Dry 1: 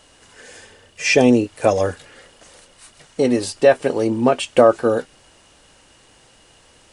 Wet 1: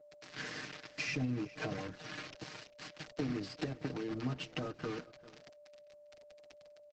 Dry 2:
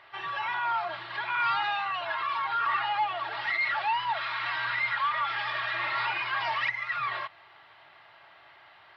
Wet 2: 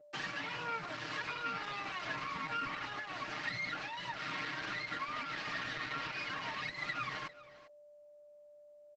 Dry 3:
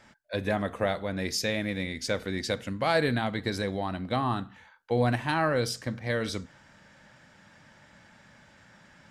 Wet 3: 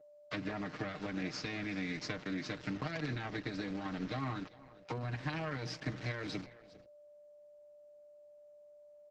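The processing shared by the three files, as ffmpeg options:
ffmpeg -i in.wav -filter_complex "[0:a]acrusher=bits=4:dc=4:mix=0:aa=0.000001,acrossover=split=220[link_01][link_02];[link_02]acompressor=threshold=-25dB:ratio=5[link_03];[link_01][link_03]amix=inputs=2:normalize=0,alimiter=limit=-21dB:level=0:latency=1:release=124,acompressor=threshold=-39dB:ratio=8,aeval=exprs='val(0)+0.001*sin(2*PI*590*n/s)':channel_layout=same,highpass=120,equalizer=frequency=130:width_type=q:width=4:gain=6,equalizer=frequency=250:width_type=q:width=4:gain=6,equalizer=frequency=520:width_type=q:width=4:gain=-10,equalizer=frequency=900:width_type=q:width=4:gain=-7,equalizer=frequency=3400:width_type=q:width=4:gain=-5,lowpass=frequency=5200:width=0.5412,lowpass=frequency=5200:width=1.3066,aecho=1:1:6.5:0.8,asplit=2[link_04][link_05];[link_05]aecho=0:1:398:0.112[link_06];[link_04][link_06]amix=inputs=2:normalize=0,volume=5.5dB" -ar 48000 -c:a libopus -b:a 12k out.opus

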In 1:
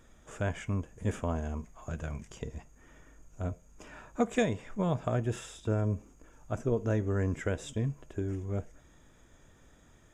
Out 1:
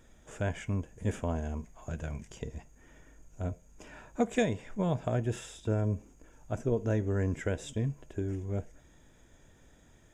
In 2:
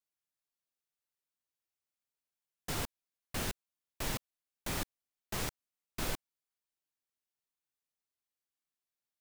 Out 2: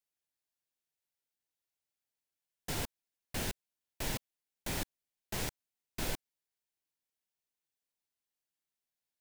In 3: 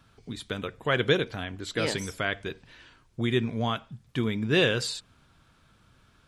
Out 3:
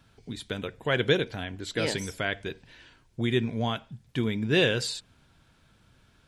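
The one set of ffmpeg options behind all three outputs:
ffmpeg -i in.wav -af "equalizer=frequency=1200:width=5:gain=-7.5" out.wav

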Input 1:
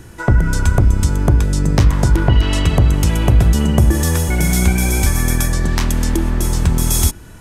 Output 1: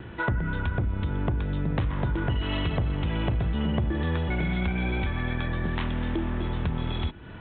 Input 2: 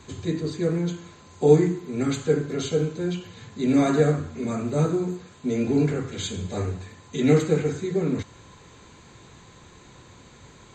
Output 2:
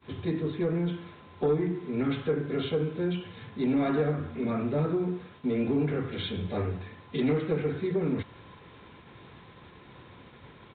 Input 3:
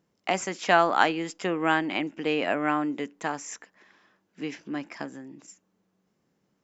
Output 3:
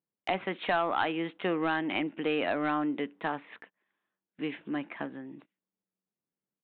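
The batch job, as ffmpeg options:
ffmpeg -i in.wav -af "acompressor=threshold=-23dB:ratio=2.5,highpass=frequency=82:poles=1,aresample=8000,asoftclip=type=tanh:threshold=-18dB,aresample=44100,agate=range=-22dB:threshold=-51dB:ratio=16:detection=peak" out.wav

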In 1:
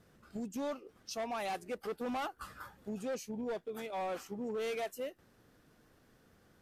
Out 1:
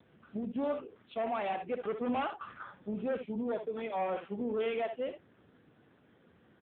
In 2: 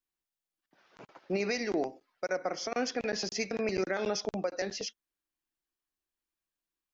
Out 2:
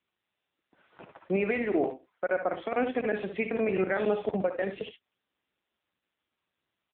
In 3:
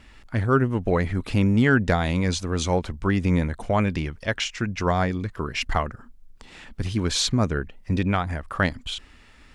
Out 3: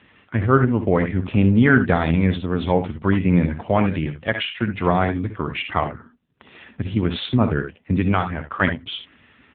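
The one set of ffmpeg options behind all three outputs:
ffmpeg -i in.wav -af "aecho=1:1:62|74:0.335|0.224,volume=4.5dB" -ar 8000 -c:a libopencore_amrnb -b:a 6700 out.amr

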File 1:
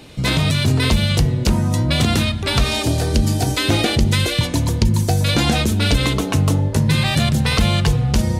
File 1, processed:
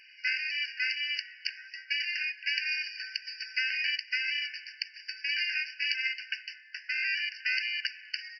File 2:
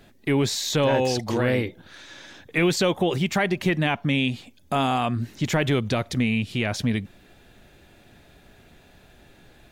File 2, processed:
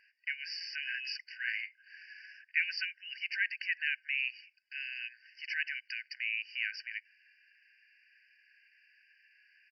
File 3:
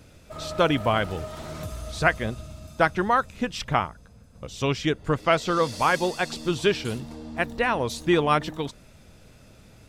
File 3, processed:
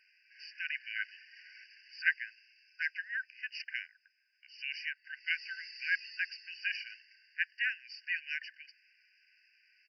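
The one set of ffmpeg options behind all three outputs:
ffmpeg -i in.wav -af "aresample=11025,aresample=44100,afftfilt=real='re*eq(mod(floor(b*sr/1024/1500),2),1)':imag='im*eq(mod(floor(b*sr/1024/1500),2),1)':win_size=1024:overlap=0.75,volume=-4dB" out.wav

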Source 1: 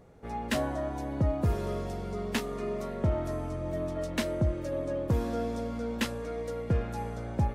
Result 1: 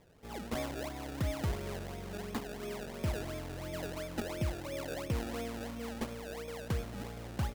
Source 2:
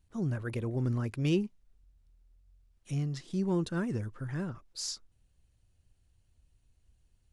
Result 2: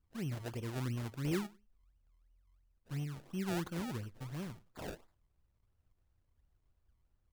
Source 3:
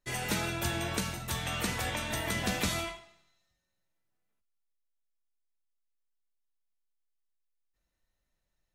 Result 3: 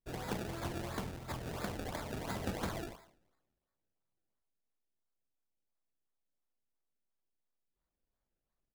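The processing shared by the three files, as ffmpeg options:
ffmpeg -i in.wav -af "aecho=1:1:98|196:0.0794|0.0143,acrusher=samples=29:mix=1:aa=0.000001:lfo=1:lforange=29:lforate=2.9,volume=-7dB" out.wav

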